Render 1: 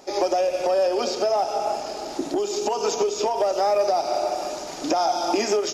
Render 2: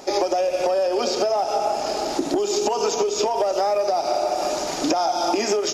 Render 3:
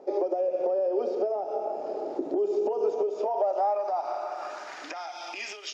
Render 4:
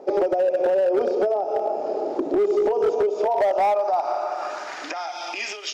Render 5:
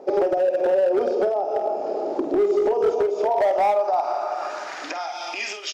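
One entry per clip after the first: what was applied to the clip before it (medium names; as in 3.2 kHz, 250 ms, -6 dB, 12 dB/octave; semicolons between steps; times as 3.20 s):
compression, threshold -26 dBFS, peak gain reduction 9.5 dB; trim +7.5 dB
band-pass sweep 450 Hz -> 2.9 kHz, 2.84–5.60 s; trim -2 dB
hard clipper -22.5 dBFS, distortion -18 dB; trim +7 dB
doubling 49 ms -10.5 dB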